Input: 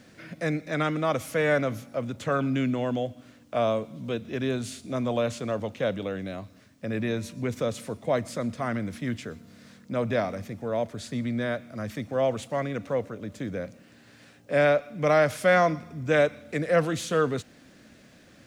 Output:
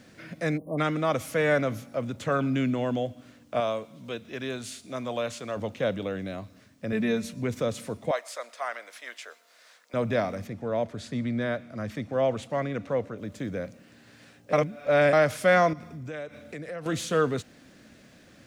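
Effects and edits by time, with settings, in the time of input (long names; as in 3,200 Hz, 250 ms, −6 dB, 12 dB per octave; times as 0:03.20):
0:00.57–0:00.78: time-frequency box erased 1,200–8,800 Hz
0:03.60–0:05.57: low-shelf EQ 460 Hz −9.5 dB
0:06.92–0:07.34: comb filter 4.6 ms, depth 67%
0:08.11–0:09.94: high-pass filter 620 Hz 24 dB per octave
0:10.47–0:13.18: high-shelf EQ 7,500 Hz −9.5 dB
0:14.53–0:15.13: reverse
0:15.73–0:16.86: downward compressor 4 to 1, threshold −36 dBFS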